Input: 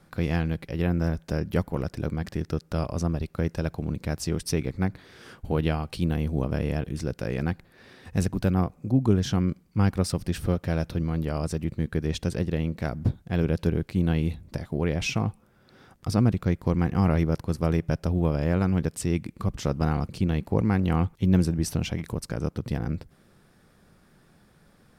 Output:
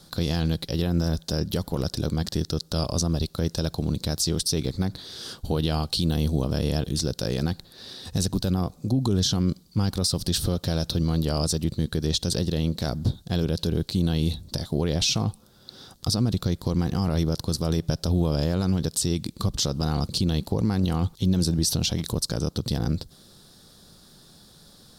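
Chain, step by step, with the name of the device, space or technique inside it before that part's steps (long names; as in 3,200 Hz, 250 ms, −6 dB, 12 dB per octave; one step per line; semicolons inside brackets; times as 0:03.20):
over-bright horn tweeter (high shelf with overshoot 3,000 Hz +9.5 dB, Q 3; brickwall limiter −18 dBFS, peak gain reduction 11 dB)
level +4 dB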